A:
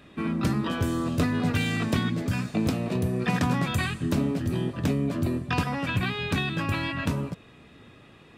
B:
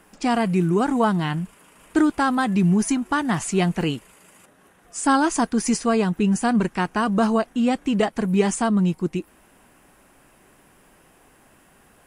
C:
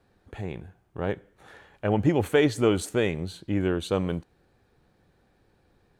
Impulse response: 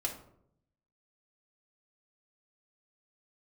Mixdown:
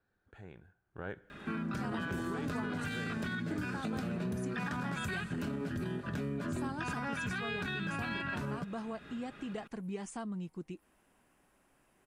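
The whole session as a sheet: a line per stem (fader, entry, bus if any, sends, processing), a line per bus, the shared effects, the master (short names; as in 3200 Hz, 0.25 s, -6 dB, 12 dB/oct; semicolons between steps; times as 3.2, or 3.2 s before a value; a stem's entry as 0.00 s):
+0.5 dB, 1.30 s, bus A, no send, comb 4.9 ms, depth 32%
-15.0 dB, 1.55 s, no bus, no send, dry
0.82 s -17 dB -> 1.06 s -6.5 dB, 0.00 s, bus A, no send, limiter -18.5 dBFS, peak gain reduction 8 dB
bus A: 0.0 dB, bell 1500 Hz +12.5 dB 0.37 oct; limiter -20.5 dBFS, peak gain reduction 9.5 dB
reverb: off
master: high shelf 10000 Hz -4 dB; compressor 2:1, threshold -41 dBFS, peak gain reduction 10 dB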